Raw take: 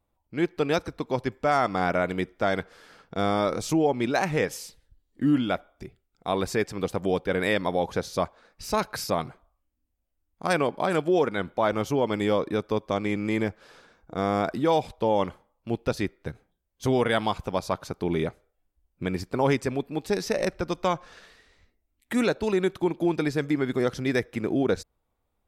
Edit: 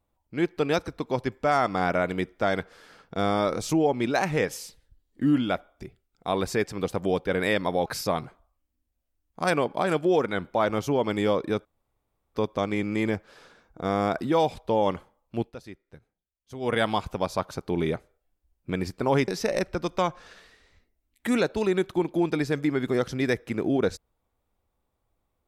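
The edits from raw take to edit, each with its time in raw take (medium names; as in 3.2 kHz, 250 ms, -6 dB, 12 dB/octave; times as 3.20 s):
7.86–8.89 s: delete
12.68 s: insert room tone 0.70 s
15.74–17.06 s: dip -15 dB, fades 0.13 s
19.61–20.14 s: delete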